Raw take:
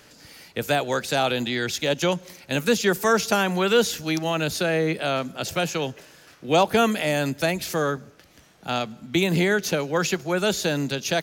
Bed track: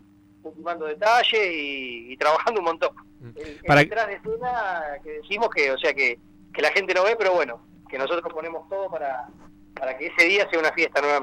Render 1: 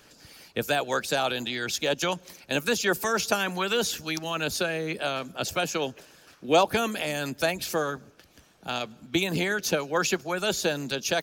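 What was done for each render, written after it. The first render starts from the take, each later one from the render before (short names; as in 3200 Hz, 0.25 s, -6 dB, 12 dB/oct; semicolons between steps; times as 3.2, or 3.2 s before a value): notch 2000 Hz, Q 12; harmonic-percussive split harmonic -9 dB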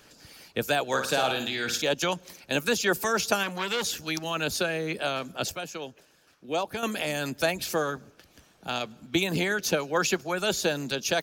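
0.87–1.82 flutter echo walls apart 9.3 m, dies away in 0.47 s; 3.43–4.08 core saturation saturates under 2000 Hz; 5.52–6.83 gain -8.5 dB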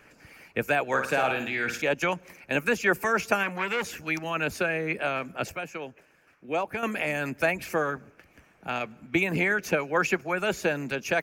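resonant high shelf 2900 Hz -7.5 dB, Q 3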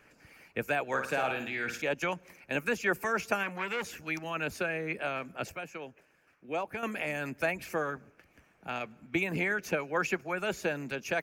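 gain -5.5 dB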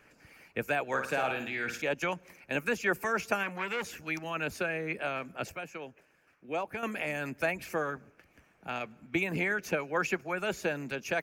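nothing audible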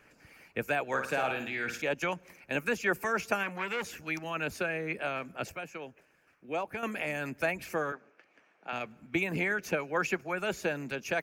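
7.92–8.73 BPF 360–4900 Hz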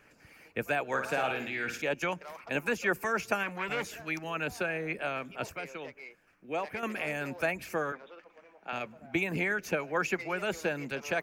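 add bed track -26.5 dB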